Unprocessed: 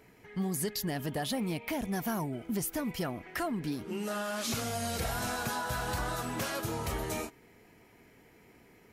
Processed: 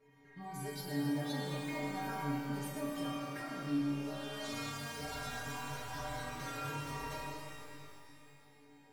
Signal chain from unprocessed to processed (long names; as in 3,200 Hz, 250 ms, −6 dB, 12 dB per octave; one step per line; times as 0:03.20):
low-pass filter 2,800 Hz 6 dB per octave
stiff-string resonator 140 Hz, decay 0.83 s, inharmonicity 0.008
reverb with rising layers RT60 2.5 s, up +12 semitones, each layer −8 dB, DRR −2 dB
level +9 dB